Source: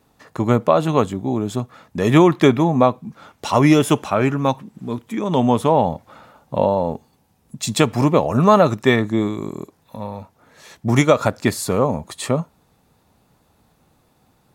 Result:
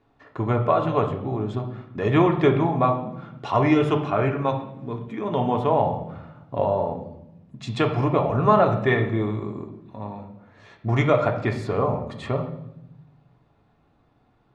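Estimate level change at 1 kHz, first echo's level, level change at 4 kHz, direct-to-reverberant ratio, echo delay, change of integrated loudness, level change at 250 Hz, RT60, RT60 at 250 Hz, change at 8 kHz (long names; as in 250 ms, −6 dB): −3.5 dB, no echo audible, −9.5 dB, 2.0 dB, no echo audible, −5.0 dB, −7.0 dB, 0.85 s, 1.4 s, below −20 dB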